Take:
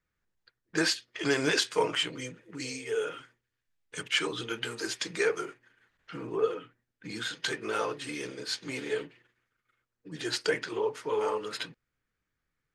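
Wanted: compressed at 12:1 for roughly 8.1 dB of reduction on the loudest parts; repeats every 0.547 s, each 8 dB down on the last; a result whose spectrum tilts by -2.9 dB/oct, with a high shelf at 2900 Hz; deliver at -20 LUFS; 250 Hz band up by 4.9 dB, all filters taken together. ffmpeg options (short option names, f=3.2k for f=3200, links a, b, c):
-af "equalizer=f=250:t=o:g=6.5,highshelf=f=2.9k:g=4,acompressor=threshold=-27dB:ratio=12,aecho=1:1:547|1094|1641|2188|2735:0.398|0.159|0.0637|0.0255|0.0102,volume=13.5dB"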